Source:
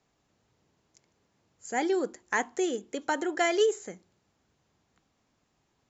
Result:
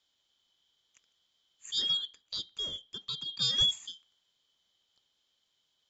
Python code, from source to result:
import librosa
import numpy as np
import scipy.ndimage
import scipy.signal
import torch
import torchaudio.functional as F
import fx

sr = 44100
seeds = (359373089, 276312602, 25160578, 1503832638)

y = fx.band_shuffle(x, sr, order='3412')
y = fx.lowpass(y, sr, hz=2100.0, slope=6, at=(1.97, 3.42))
y = F.gain(torch.from_numpy(y), -3.0).numpy()